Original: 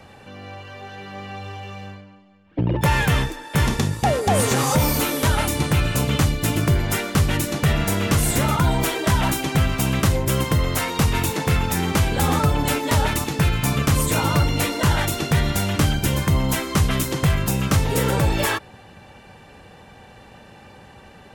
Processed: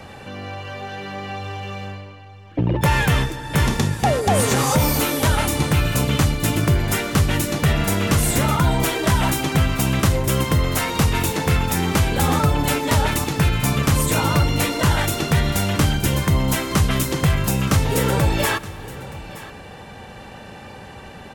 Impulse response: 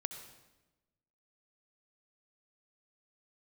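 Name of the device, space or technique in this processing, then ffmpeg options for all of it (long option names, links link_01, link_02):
ducked reverb: -filter_complex "[0:a]asplit=3[link_01][link_02][link_03];[1:a]atrim=start_sample=2205[link_04];[link_02][link_04]afir=irnorm=-1:irlink=0[link_05];[link_03]apad=whole_len=941461[link_06];[link_05][link_06]sidechaincompress=threshold=-35dB:ratio=8:attack=16:release=312,volume=2.5dB[link_07];[link_01][link_07]amix=inputs=2:normalize=0,aecho=1:1:922:0.126"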